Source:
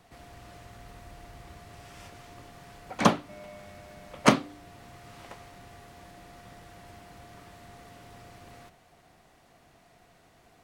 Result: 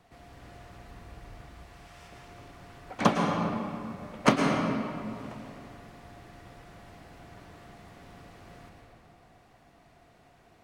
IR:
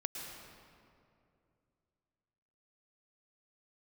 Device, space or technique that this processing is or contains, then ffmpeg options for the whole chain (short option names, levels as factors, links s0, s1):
swimming-pool hall: -filter_complex "[0:a]asettb=1/sr,asplit=3[s0][s1][s2];[s0]atrim=end=1.474[s3];[s1]atrim=start=1.47:end=2.12,asetpts=PTS-STARTPTS,afade=t=in:d=0.004:c=qsin,afade=t=out:st=0.646:d=0.004:c=qsin,lowshelf=f=470:g=-8.5[s4];[s2]atrim=start=2.116[s5];[s3][s4]acrossfade=d=0.004:c1=hsin:c2=qsin[s6];[s6][s5]acrossfade=d=0.004:c1=qsin:c2=hsin[s7];[1:a]atrim=start_sample=2205[s8];[s7][s8]afir=irnorm=-1:irlink=0,highshelf=f=4600:g=-6"